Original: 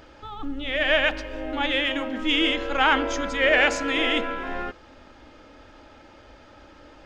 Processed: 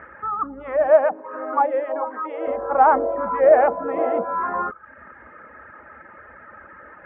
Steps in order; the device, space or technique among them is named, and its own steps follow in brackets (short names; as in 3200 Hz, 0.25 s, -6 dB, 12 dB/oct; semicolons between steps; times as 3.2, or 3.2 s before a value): envelope filter bass rig (envelope low-pass 750–1900 Hz down, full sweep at -21.5 dBFS; speaker cabinet 70–2000 Hz, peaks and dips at 100 Hz -9 dB, 200 Hz +3 dB, 290 Hz -10 dB, 780 Hz -4 dB, 1200 Hz +5 dB); reverb removal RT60 0.66 s; 0.9–2.46 HPF 150 Hz -> 450 Hz 24 dB/oct; gain +4 dB